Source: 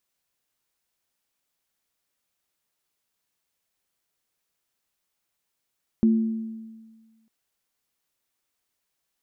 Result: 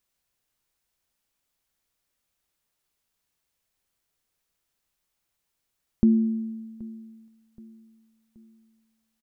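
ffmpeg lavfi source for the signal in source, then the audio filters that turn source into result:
-f lavfi -i "aevalsrc='0.2*pow(10,-3*t/1.53)*sin(2*PI*223*t)+0.0447*pow(10,-3*t/0.98)*sin(2*PI*347*t)':d=1.25:s=44100"
-af "lowshelf=f=90:g=11,aecho=1:1:776|1552|2328:0.075|0.036|0.0173"

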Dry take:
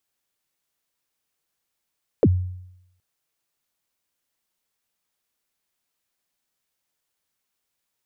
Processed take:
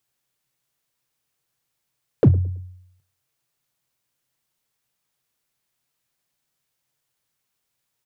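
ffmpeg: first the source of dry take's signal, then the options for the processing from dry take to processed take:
-f lavfi -i "aevalsrc='0.316*pow(10,-3*t/0.81)*sin(2*PI*(570*0.048/log(91/570)*(exp(log(91/570)*min(t,0.048)/0.048)-1)+91*max(t-0.048,0)))':d=0.77:s=44100"
-filter_complex "[0:a]equalizer=f=130:t=o:w=0.34:g=13.5,asplit=2[s0][s1];[s1]aeval=exprs='0.178*(abs(mod(val(0)/0.178+3,4)-2)-1)':c=same,volume=0.251[s2];[s0][s2]amix=inputs=2:normalize=0,asplit=2[s3][s4];[s4]adelay=109,lowpass=f=970:p=1,volume=0.0891,asplit=2[s5][s6];[s6]adelay=109,lowpass=f=970:p=1,volume=0.34,asplit=2[s7][s8];[s8]adelay=109,lowpass=f=970:p=1,volume=0.34[s9];[s3][s5][s7][s9]amix=inputs=4:normalize=0"

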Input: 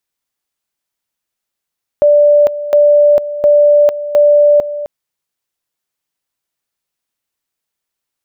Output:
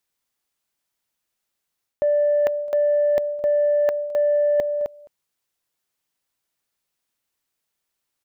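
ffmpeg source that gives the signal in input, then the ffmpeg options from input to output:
-f lavfi -i "aevalsrc='pow(10,(-4.5-13.5*gte(mod(t,0.71),0.45))/20)*sin(2*PI*587*t)':d=2.84:s=44100"
-af "aecho=1:1:212:0.0631,areverse,acompressor=threshold=0.158:ratio=16,areverse,asoftclip=type=tanh:threshold=0.266"

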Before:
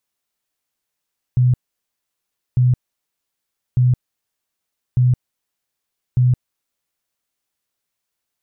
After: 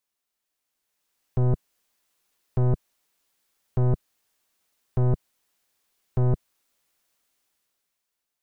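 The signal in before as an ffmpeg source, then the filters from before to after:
-f lavfi -i "aevalsrc='0.299*sin(2*PI*125*mod(t,1.2))*lt(mod(t,1.2),21/125)':d=6:s=44100"
-af "equalizer=f=110:w=1.6:g=-7.5,dynaudnorm=f=120:g=17:m=3.98,aeval=exprs='(tanh(10*val(0)+0.7)-tanh(0.7))/10':c=same"

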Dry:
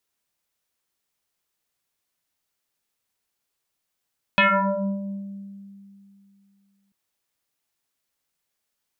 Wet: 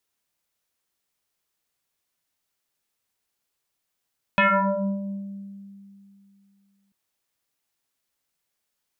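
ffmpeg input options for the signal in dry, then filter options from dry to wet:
-f lavfi -i "aevalsrc='0.224*pow(10,-3*t/2.8)*sin(2*PI*198*t+7.8*pow(10,-3*t/1.47)*sin(2*PI*1.98*198*t))':d=2.54:s=44100"
-filter_complex "[0:a]acrossover=split=2600[s0][s1];[s1]acompressor=threshold=0.0126:ratio=4:attack=1:release=60[s2];[s0][s2]amix=inputs=2:normalize=0"

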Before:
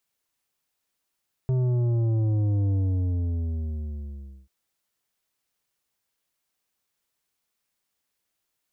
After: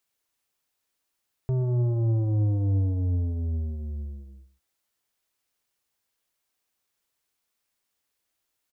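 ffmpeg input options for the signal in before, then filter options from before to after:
-f lavfi -i "aevalsrc='0.0841*clip((2.99-t)/1.78,0,1)*tanh(2.82*sin(2*PI*130*2.99/log(65/130)*(exp(log(65/130)*t/2.99)-1)))/tanh(2.82)':d=2.99:s=44100"
-filter_complex "[0:a]equalizer=f=170:w=2.8:g=-5,asplit=2[s0][s1];[s1]adelay=122.4,volume=0.2,highshelf=f=4000:g=-2.76[s2];[s0][s2]amix=inputs=2:normalize=0"

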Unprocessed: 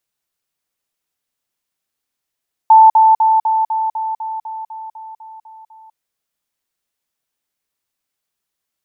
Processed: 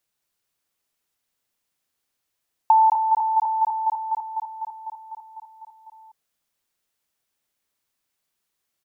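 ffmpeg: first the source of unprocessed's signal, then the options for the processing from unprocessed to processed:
-f lavfi -i "aevalsrc='pow(10,(-3-3*floor(t/0.25))/20)*sin(2*PI*883*t)*clip(min(mod(t,0.25),0.2-mod(t,0.25))/0.005,0,1)':d=3.25:s=44100"
-filter_complex "[0:a]acompressor=threshold=0.178:ratio=5,asplit=2[s0][s1];[s1]aecho=0:1:218:0.501[s2];[s0][s2]amix=inputs=2:normalize=0"

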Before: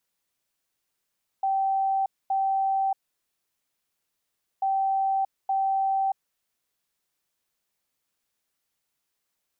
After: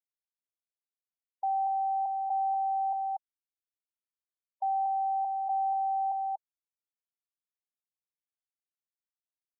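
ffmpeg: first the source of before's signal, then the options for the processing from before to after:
-f lavfi -i "aevalsrc='0.0841*sin(2*PI*776*t)*clip(min(mod(mod(t,3.19),0.87),0.63-mod(mod(t,3.19),0.87))/0.005,0,1)*lt(mod(t,3.19),1.74)':d=6.38:s=44100"
-filter_complex "[0:a]equalizer=f=650:w=0.32:g=-4,asplit=2[s0][s1];[s1]aecho=0:1:238:0.668[s2];[s0][s2]amix=inputs=2:normalize=0,afftfilt=real='re*gte(hypot(re,im),0.0158)':imag='im*gte(hypot(re,im),0.0158)':win_size=1024:overlap=0.75"

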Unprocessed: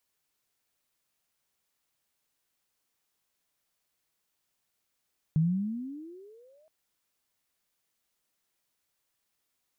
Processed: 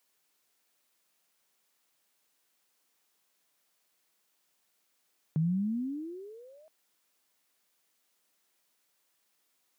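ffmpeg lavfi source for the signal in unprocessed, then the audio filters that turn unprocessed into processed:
-f lavfi -i "aevalsrc='pow(10,(-20-40*t/1.32)/20)*sin(2*PI*152*1.32/(25*log(2)/12)*(exp(25*log(2)/12*t/1.32)-1))':d=1.32:s=44100"
-filter_complex "[0:a]highpass=200,asplit=2[s0][s1];[s1]alimiter=level_in=3.35:limit=0.0631:level=0:latency=1,volume=0.299,volume=0.794[s2];[s0][s2]amix=inputs=2:normalize=0"

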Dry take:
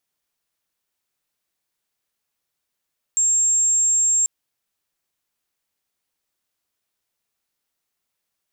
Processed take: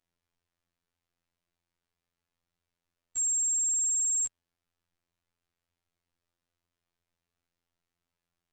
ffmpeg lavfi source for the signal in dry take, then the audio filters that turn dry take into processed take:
-f lavfi -i "aevalsrc='0.178*sin(2*PI*7500*t)':d=1.09:s=44100"
-af "aemphasis=mode=reproduction:type=bsi,afftfilt=real='hypot(re,im)*cos(PI*b)':imag='0':win_size=2048:overlap=0.75"

